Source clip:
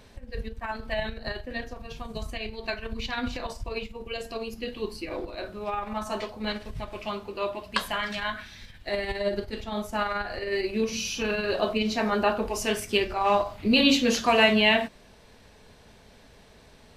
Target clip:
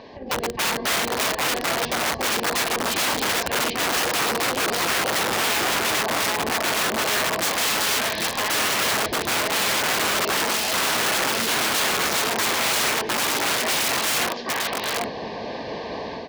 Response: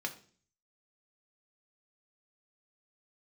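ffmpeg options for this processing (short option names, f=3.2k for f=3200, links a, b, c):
-filter_complex "[0:a]asplit=4[a][b][c][d];[b]asetrate=35002,aresample=44100,atempo=1.25992,volume=-9dB[e];[c]asetrate=52444,aresample=44100,atempo=0.840896,volume=-15dB[f];[d]asetrate=66075,aresample=44100,atempo=0.66742,volume=-10dB[g];[a][e][f][g]amix=inputs=4:normalize=0,tiltshelf=f=1.1k:g=8,aeval=exprs='0.75*(cos(1*acos(clip(val(0)/0.75,-1,1)))-cos(1*PI/2))+0.299*(cos(7*acos(clip(val(0)/0.75,-1,1)))-cos(7*PI/2))':c=same,dynaudnorm=f=280:g=3:m=12dB,asuperstop=centerf=1300:order=8:qfactor=4.2,acompressor=threshold=-17dB:ratio=20,aecho=1:1:825:0.473,asplit=2[h][i];[i]highpass=f=720:p=1,volume=16dB,asoftclip=type=tanh:threshold=-7.5dB[j];[h][j]amix=inputs=2:normalize=0,lowpass=f=1.7k:p=1,volume=-6dB,highshelf=f=6.6k:t=q:w=3:g=-13.5,asetrate=45938,aresample=44100,aeval=exprs='(mod(5.96*val(0)+1,2)-1)/5.96':c=same,highpass=f=260:p=1,volume=-2dB"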